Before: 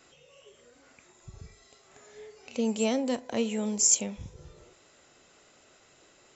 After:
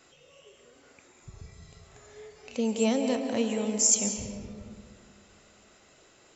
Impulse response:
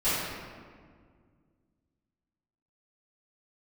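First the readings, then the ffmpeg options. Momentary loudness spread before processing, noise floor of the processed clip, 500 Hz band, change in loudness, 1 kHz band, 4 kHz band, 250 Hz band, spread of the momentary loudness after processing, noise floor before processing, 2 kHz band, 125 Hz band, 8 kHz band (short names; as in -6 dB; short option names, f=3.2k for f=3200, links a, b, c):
16 LU, -60 dBFS, +2.0 dB, +0.5 dB, +1.5 dB, +0.5 dB, +1.5 dB, 19 LU, -61 dBFS, +1.0 dB, +1.5 dB, n/a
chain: -filter_complex "[0:a]asplit=2[a][b];[1:a]atrim=start_sample=2205,adelay=131[c];[b][c]afir=irnorm=-1:irlink=0,volume=-18dB[d];[a][d]amix=inputs=2:normalize=0"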